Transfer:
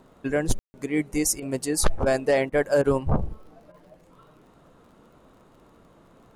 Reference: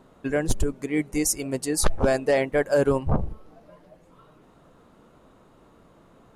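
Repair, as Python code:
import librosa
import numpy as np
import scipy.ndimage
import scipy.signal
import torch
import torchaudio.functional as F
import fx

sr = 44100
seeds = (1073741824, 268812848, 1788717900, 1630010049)

y = fx.fix_declick_ar(x, sr, threshold=6.5)
y = fx.fix_ambience(y, sr, seeds[0], print_start_s=4.49, print_end_s=4.99, start_s=0.59, end_s=0.74)
y = fx.fix_interpolate(y, sr, at_s=(1.4, 2.04, 2.5, 2.82, 3.72), length_ms=21.0)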